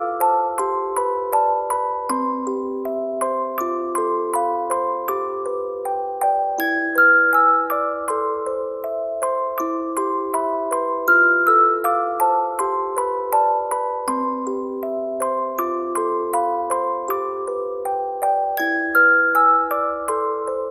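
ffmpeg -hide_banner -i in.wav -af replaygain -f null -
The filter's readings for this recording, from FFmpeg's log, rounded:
track_gain = +0.3 dB
track_peak = 0.410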